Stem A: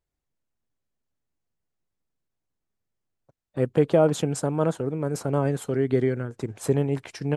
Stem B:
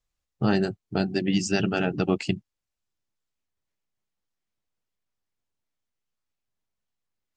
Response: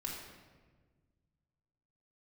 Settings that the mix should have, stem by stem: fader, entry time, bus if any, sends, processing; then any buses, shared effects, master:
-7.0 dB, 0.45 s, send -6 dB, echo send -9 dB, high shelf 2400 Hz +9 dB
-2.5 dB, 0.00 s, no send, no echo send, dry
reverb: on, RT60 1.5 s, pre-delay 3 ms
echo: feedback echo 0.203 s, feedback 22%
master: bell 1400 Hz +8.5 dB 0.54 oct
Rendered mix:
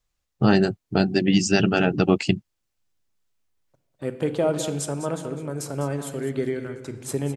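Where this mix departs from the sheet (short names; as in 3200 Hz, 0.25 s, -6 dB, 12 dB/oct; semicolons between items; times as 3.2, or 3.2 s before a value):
stem B -2.5 dB -> +5.0 dB; master: missing bell 1400 Hz +8.5 dB 0.54 oct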